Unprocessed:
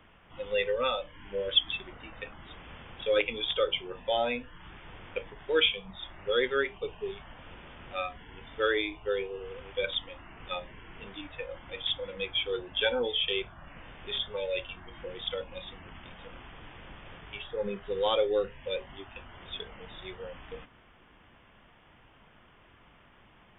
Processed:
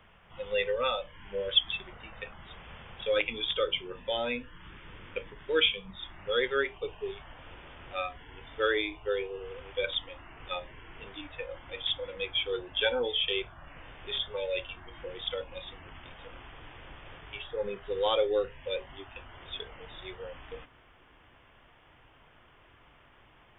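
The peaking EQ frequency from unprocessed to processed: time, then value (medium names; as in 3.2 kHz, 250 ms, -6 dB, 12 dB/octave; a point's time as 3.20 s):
peaking EQ -9 dB 0.47 oct
3.02 s 290 Hz
3.51 s 730 Hz
5.99 s 730 Hz
6.60 s 200 Hz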